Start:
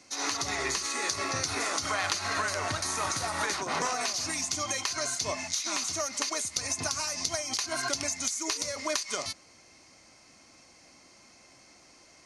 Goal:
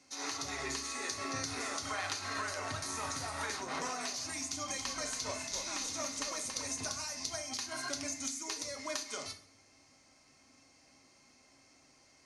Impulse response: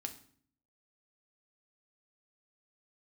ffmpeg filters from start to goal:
-filter_complex "[0:a]asettb=1/sr,asplit=3[a][b][c];[a]atrim=end=4.404[d];[b]atrim=start=4.4:end=6.89,asetpts=PTS-STARTPTS,afade=t=in:d=0.004:c=qsin,afade=t=out:st=2.486:d=0.004:c=qsin,asplit=5[e][f][g][h][i];[f]adelay=279,afreqshift=-54,volume=-5.5dB[j];[g]adelay=558,afreqshift=-108,volume=-14.1dB[k];[h]adelay=837,afreqshift=-162,volume=-22.8dB[l];[i]adelay=1116,afreqshift=-216,volume=-31.4dB[m];[e][j][k][l][m]amix=inputs=5:normalize=0,atrim=end_sample=109809[n];[c]atrim=start=6.886[o];[d][n]acrossfade=d=0.004:c1=hsin:c2=qsin[p];[p][o]acrossfade=d=0.004:c1=qsin:c2=hsin[q];[1:a]atrim=start_sample=2205,asetrate=43659,aresample=44100[r];[q][r]afir=irnorm=-1:irlink=0,volume=-5.5dB"

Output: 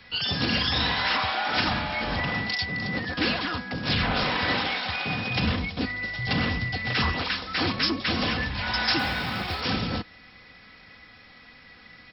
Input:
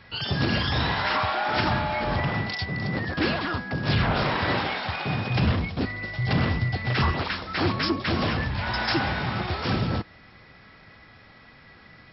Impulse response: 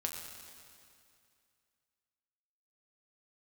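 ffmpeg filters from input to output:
-filter_complex "[0:a]aecho=1:1:4:0.38,acrossover=split=160|2100[a][b][c];[c]acontrast=82[d];[a][b][d]amix=inputs=3:normalize=0,asettb=1/sr,asplit=3[e][f][g];[e]atrim=end=8.994[h];[f]atrim=start=8.99:end=9.61,asetpts=PTS-STARTPTS,afade=t=in:d=0.004:c=qsin,afade=t=out:st=0.616:d=0.004:c=qsin,acrusher=bits=6:mode=log:mix=0:aa=0.000001[i];[g]atrim=start=9.606[j];[h][i]acrossfade=d=0.004:c1=hsin:c2=qsin[k];[k][j]acrossfade=d=0.004:c1=qsin:c2=hsin,volume=-3dB"

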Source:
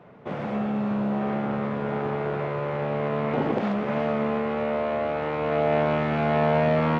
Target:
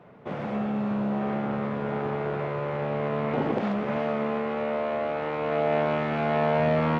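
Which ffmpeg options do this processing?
-filter_complex "[0:a]asettb=1/sr,asplit=3[a][b][c];[a]atrim=end=3.964[d];[b]atrim=start=3.96:end=6.6,asetpts=PTS-STARTPTS,afade=t=in:d=0.004:c=qsin,afade=t=out:st=2.636:d=0.004:c=qsin,highpass=f=150:p=1[e];[c]atrim=start=6.596[f];[d][e]acrossfade=d=0.004:c1=hsin:c2=qsin[g];[g][f]acrossfade=d=0.004:c1=qsin:c2=hsin,volume=-1.5dB"

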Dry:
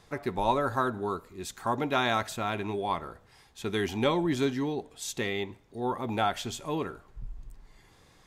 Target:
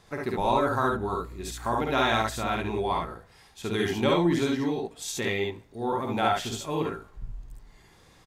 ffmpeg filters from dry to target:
-filter_complex "[0:a]asettb=1/sr,asplit=3[a][b][c];[a]atrim=end=0.854[d];[b]atrim=start=0.85:end=3.06,asetpts=PTS-STARTPTS,afade=t=in:d=0.004:c=qsin,afade=t=out:st=2.206:d=0.004:c=qsin,aeval=exprs='val(0)+0.00501*(sin(2*PI*60*n/s)+sin(2*PI*2*60*n/s)/2+sin(2*PI*3*60*n/s)/3+sin(2*PI*4*60*n/s)/4+sin(2*PI*5*60*n/s)/5)':c=same[e];[c]atrim=start=3.056[f];[d][e]acrossfade=d=0.004:c1=hsin:c2=qsin[g];[g][f]acrossfade=d=0.004:c1=qsin:c2=hsin,aecho=1:1:52|70:0.668|0.708"

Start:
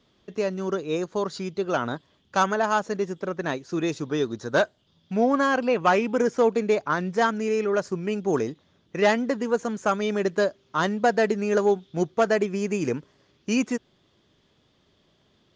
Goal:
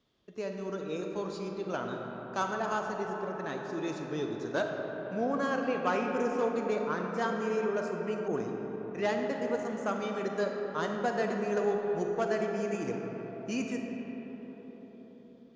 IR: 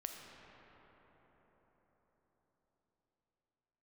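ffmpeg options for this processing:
-filter_complex "[1:a]atrim=start_sample=2205[a];[0:a][a]afir=irnorm=-1:irlink=0,asettb=1/sr,asplit=3[b][c][d];[b]atrim=end=8.284[e];[c]atrim=start=8.28:end=9.3,asetpts=PTS-STARTPTS,afade=t=in:d=0.004:c=qsin,afade=t=out:st=1.016:d=0.004:c=qsin,adynamicequalizer=threshold=0.0112:dfrequency=1700:dqfactor=0.7:tfrequency=1700:tqfactor=0.7:attack=5:release=100:ratio=0.375:range=1.5:mode=cutabove:tftype=highshelf[f];[d]atrim=start=9.296[g];[e][f]acrossfade=d=0.004:c1=hsin:c2=qsin[h];[h][g]acrossfade=d=0.004:c1=qsin:c2=hsin,volume=-6.5dB"

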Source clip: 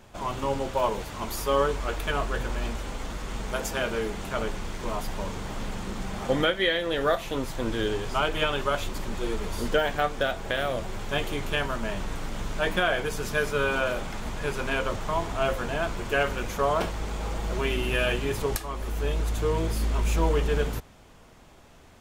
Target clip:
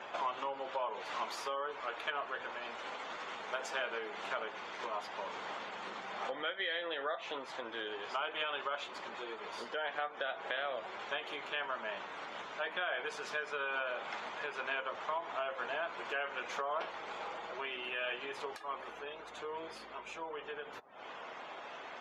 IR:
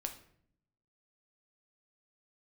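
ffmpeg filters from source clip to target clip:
-af "alimiter=limit=-20.5dB:level=0:latency=1:release=400,acompressor=threshold=-47dB:ratio=4,afftdn=nr=26:nf=-64,highpass=660,lowpass=4.1k,volume=13dB"

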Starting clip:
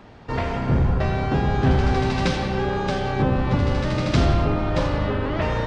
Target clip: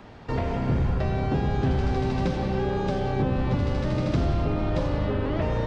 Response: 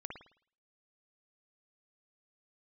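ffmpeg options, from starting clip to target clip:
-filter_complex "[0:a]acrossover=split=810|1900[a][b][c];[a]acompressor=threshold=-21dB:ratio=4[d];[b]acompressor=threshold=-44dB:ratio=4[e];[c]acompressor=threshold=-45dB:ratio=4[f];[d][e][f]amix=inputs=3:normalize=0"

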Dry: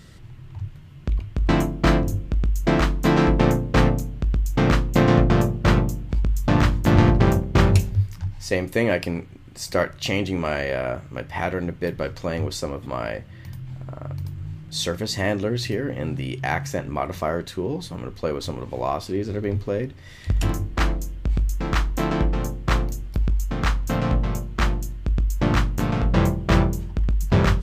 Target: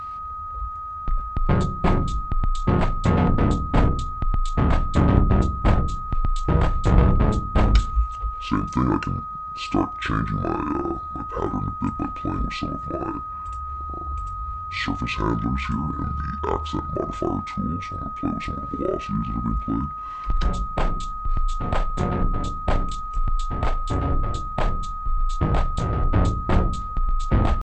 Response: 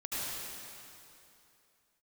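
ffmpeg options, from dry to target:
-af "aeval=exprs='val(0)+0.0316*sin(2*PI*2300*n/s)':c=same,asetrate=24046,aresample=44100,atempo=1.83401"

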